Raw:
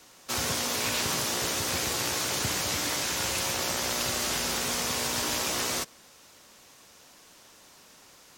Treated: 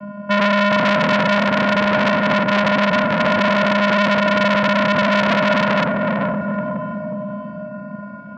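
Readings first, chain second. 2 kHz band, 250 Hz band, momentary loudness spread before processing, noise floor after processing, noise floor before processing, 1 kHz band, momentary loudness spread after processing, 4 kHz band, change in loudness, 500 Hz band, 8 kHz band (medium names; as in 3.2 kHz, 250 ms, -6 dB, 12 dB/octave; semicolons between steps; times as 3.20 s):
+15.5 dB, +20.5 dB, 1 LU, -33 dBFS, -55 dBFS, +17.0 dB, 12 LU, +4.0 dB, +11.0 dB, +19.0 dB, under -15 dB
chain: low-pass 1.2 kHz 24 dB/octave; compressor with a negative ratio -34 dBFS, ratio -0.5; vocoder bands 8, square 204 Hz; echo that smears into a reverb 460 ms, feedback 53%, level -5 dB; loudness maximiser +31 dB; transformer saturation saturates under 1.7 kHz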